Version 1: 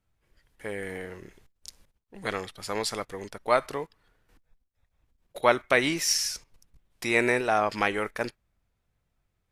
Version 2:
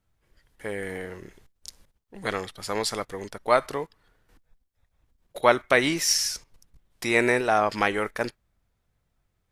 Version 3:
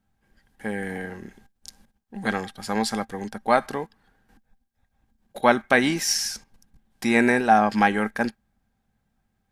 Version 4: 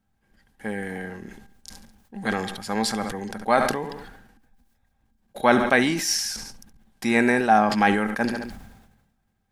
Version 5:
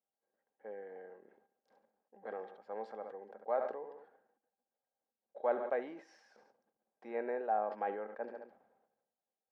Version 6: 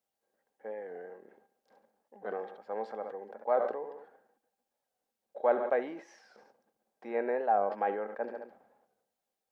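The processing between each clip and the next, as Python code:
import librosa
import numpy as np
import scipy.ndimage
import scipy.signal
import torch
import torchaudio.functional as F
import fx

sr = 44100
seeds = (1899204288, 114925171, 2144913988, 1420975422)

y1 = fx.peak_eq(x, sr, hz=2500.0, db=-2.5, octaves=0.34)
y1 = F.gain(torch.from_numpy(y1), 2.5).numpy()
y2 = fx.small_body(y1, sr, hz=(220.0, 790.0, 1600.0), ring_ms=70, db=15)
y2 = F.gain(torch.from_numpy(y2), -1.0).numpy()
y3 = fx.echo_feedback(y2, sr, ms=70, feedback_pct=41, wet_db=-19.0)
y3 = fx.sustainer(y3, sr, db_per_s=53.0)
y3 = F.gain(torch.from_numpy(y3), -1.0).numpy()
y4 = fx.ladder_bandpass(y3, sr, hz=590.0, resonance_pct=55)
y4 = F.gain(torch.from_numpy(y4), -5.5).numpy()
y5 = fx.record_warp(y4, sr, rpm=45.0, depth_cents=100.0)
y5 = F.gain(torch.from_numpy(y5), 6.0).numpy()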